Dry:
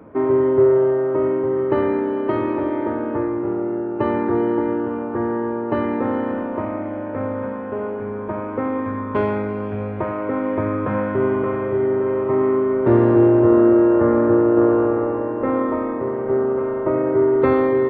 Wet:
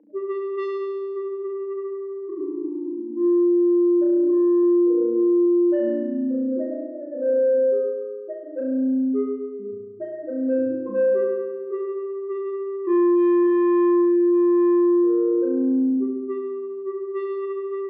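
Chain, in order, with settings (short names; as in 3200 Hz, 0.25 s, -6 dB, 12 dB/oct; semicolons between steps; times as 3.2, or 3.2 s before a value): loudest bins only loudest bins 1; speaker cabinet 310–2200 Hz, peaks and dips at 370 Hz +5 dB, 560 Hz +9 dB, 870 Hz +7 dB, 1300 Hz -8 dB; soft clip -20 dBFS, distortion -11 dB; notch 940 Hz, Q 14; on a send: flutter echo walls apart 5.9 m, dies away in 1.3 s; on the sum: limiter -14.5 dBFS, peak gain reduction 10 dB; 4.63–5.46 dynamic EQ 600 Hz, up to +5 dB, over -40 dBFS, Q 2.7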